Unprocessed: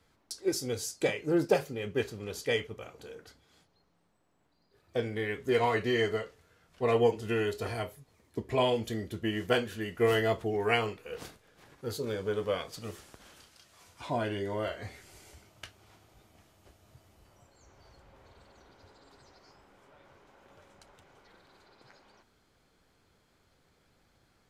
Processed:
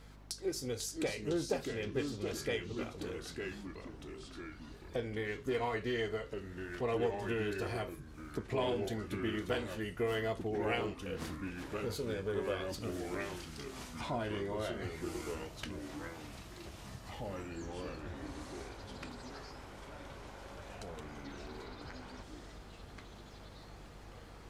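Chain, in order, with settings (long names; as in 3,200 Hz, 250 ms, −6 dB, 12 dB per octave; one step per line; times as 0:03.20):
downward compressor 2 to 1, threshold −56 dBFS, peak gain reduction 19.5 dB
mains hum 50 Hz, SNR 15 dB
delay with pitch and tempo change per echo 437 ms, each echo −3 semitones, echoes 3, each echo −6 dB
highs frequency-modulated by the lows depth 0.1 ms
level +9 dB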